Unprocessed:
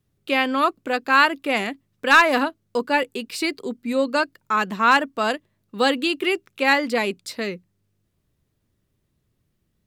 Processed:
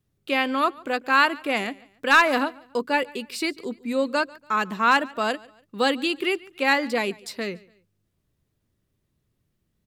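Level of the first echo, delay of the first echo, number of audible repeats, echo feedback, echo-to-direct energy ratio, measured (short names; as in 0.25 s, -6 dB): -23.0 dB, 0.143 s, 2, 37%, -22.5 dB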